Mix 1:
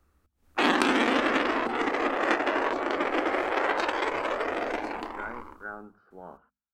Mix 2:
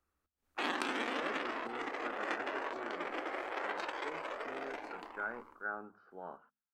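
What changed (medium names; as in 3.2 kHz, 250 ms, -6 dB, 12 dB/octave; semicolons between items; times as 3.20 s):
background -11.0 dB; master: add bass shelf 290 Hz -9.5 dB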